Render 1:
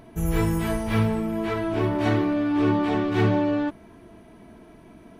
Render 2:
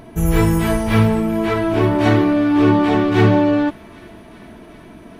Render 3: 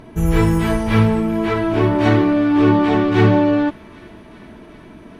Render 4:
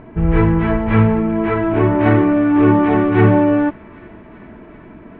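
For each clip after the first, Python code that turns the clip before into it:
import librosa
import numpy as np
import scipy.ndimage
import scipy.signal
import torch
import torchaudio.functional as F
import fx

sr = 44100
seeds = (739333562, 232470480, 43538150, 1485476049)

y1 = fx.echo_wet_highpass(x, sr, ms=390, feedback_pct=78, hz=1600.0, wet_db=-21.5)
y1 = y1 * librosa.db_to_amplitude(8.0)
y2 = fx.high_shelf(y1, sr, hz=9900.0, db=-11.5)
y2 = fx.notch(y2, sr, hz=690.0, q=15.0)
y3 = scipy.signal.sosfilt(scipy.signal.butter(4, 2400.0, 'lowpass', fs=sr, output='sos'), y2)
y3 = y3 * librosa.db_to_amplitude(1.5)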